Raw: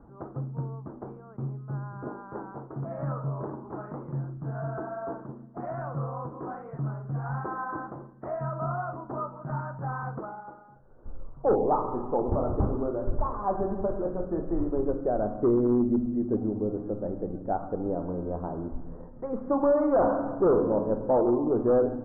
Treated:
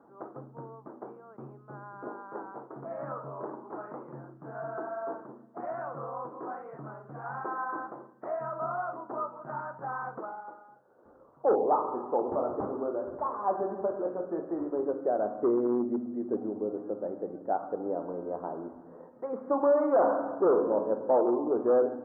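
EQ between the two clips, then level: high-pass 350 Hz 12 dB/octave; 0.0 dB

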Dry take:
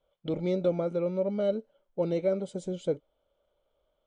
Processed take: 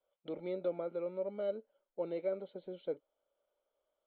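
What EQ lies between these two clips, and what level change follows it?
brick-wall FIR low-pass 4.5 kHz; three-band isolator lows -16 dB, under 270 Hz, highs -13 dB, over 2.5 kHz; treble shelf 2.8 kHz +7.5 dB; -8.0 dB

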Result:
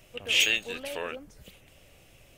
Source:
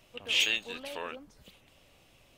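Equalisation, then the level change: graphic EQ 250/1000/4000 Hz -5/-8/-7 dB; +8.0 dB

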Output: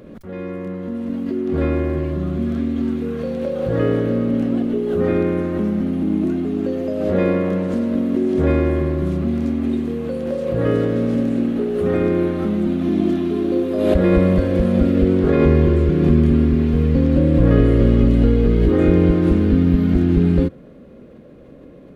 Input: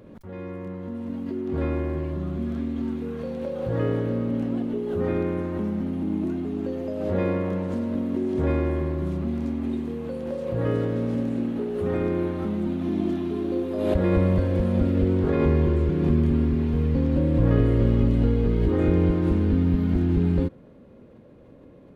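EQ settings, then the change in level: peaking EQ 100 Hz -13 dB 0.27 oct; peaking EQ 910 Hz -7.5 dB 0.31 oct; +7.5 dB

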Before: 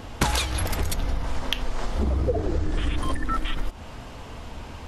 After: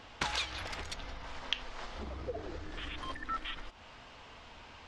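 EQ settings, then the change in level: distance through air 78 m; pre-emphasis filter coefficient 0.97; tape spacing loss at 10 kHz 24 dB; +10.0 dB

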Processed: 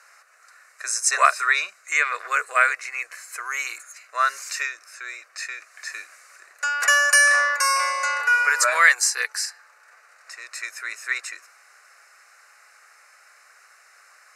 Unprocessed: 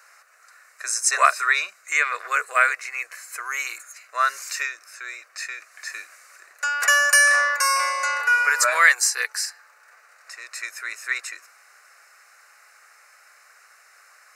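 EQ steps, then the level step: low-pass 12 kHz 12 dB/octave; 0.0 dB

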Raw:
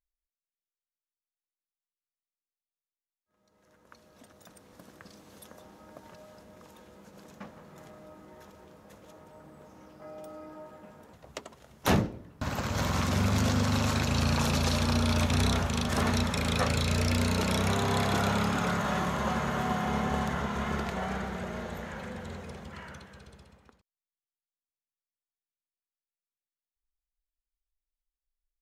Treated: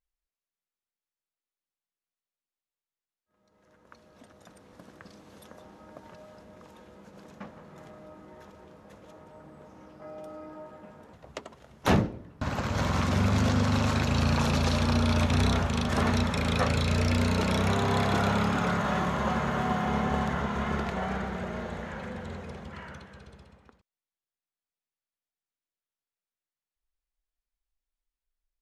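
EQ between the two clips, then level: brick-wall FIR low-pass 13 kHz; treble shelf 5.6 kHz -9.5 dB; +2.0 dB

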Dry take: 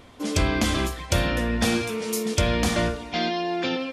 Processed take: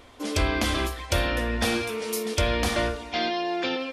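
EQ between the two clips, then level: peaking EQ 160 Hz -12.5 dB 0.91 oct; dynamic bell 7 kHz, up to -5 dB, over -46 dBFS, Q 2.1; 0.0 dB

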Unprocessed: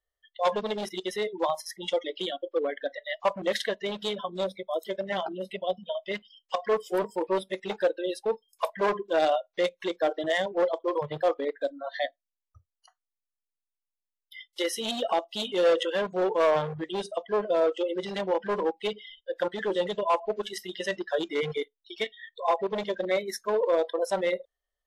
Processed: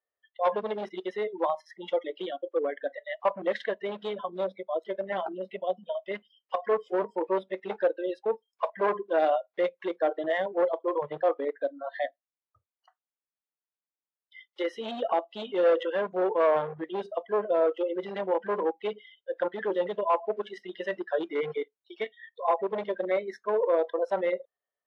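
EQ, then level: high-pass 240 Hz 12 dB/octave; low-pass 1.9 kHz 12 dB/octave; 0.0 dB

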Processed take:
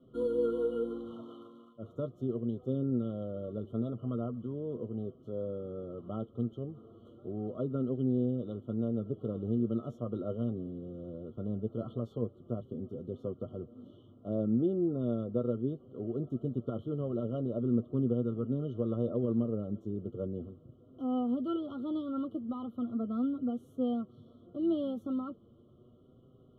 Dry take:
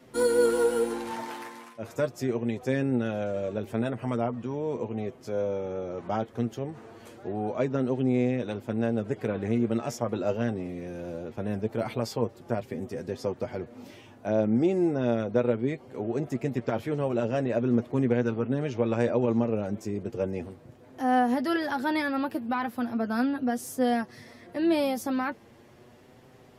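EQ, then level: brick-wall FIR band-stop 1.4–2.9 kHz; distance through air 330 m; static phaser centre 2.1 kHz, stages 4; -3.0 dB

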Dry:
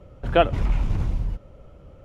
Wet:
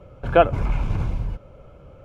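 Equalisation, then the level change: ten-band graphic EQ 125 Hz +4 dB, 500 Hz +4 dB, 1 kHz +4 dB, 2 kHz +7 dB; dynamic bell 3.3 kHz, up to -7 dB, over -39 dBFS, Q 1.2; Butterworth band-stop 1.9 kHz, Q 6.6; -1.5 dB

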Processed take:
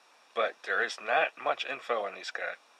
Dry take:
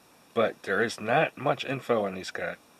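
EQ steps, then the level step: band-pass 700–6000 Hz; 0.0 dB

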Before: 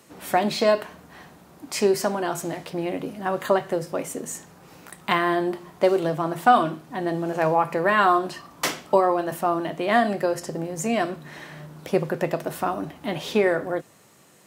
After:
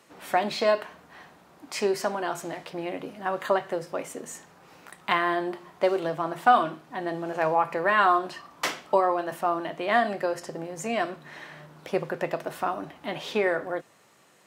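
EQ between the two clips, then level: bass shelf 390 Hz -10.5 dB; treble shelf 5.7 kHz -10.5 dB; 0.0 dB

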